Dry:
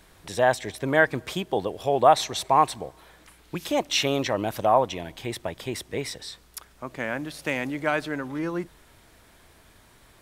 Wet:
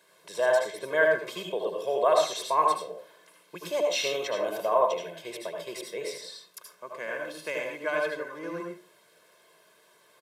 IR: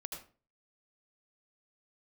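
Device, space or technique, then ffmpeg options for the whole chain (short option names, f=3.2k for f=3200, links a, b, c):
microphone above a desk: -filter_complex "[0:a]aecho=1:1:1.9:0.83[a];[1:a]atrim=start_sample=2205[b];[a][b]afir=irnorm=-1:irlink=0,highpass=f=210:w=0.5412,highpass=f=210:w=1.3066,volume=-4dB"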